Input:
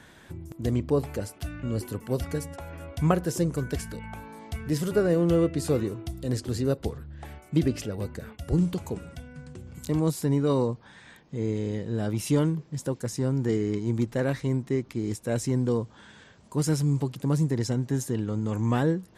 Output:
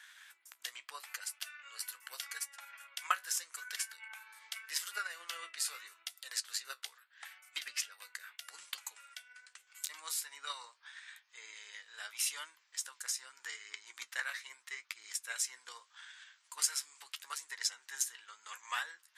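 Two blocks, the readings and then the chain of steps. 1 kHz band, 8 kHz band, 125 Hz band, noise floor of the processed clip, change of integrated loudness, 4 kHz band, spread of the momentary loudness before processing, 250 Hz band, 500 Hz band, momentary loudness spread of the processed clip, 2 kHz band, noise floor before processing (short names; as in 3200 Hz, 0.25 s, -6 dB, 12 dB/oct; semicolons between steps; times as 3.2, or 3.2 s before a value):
-7.5 dB, +2.5 dB, under -40 dB, -72 dBFS, -12.0 dB, +2.5 dB, 15 LU, under -40 dB, -35.5 dB, 16 LU, 0.0 dB, -53 dBFS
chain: HPF 1400 Hz 24 dB/oct; flange 0.8 Hz, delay 9.1 ms, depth 7.8 ms, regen +50%; transient shaper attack +6 dB, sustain -3 dB; gain +3.5 dB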